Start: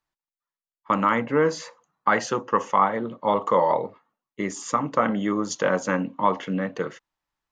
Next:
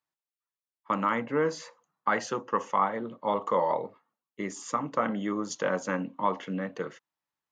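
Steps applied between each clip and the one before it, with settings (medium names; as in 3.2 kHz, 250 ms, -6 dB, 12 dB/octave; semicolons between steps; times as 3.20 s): high-pass 110 Hz; trim -6 dB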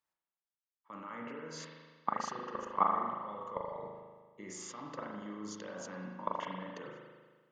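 level held to a coarse grid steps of 23 dB; spring tank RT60 1.5 s, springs 38 ms, chirp 60 ms, DRR -1 dB; trim -1 dB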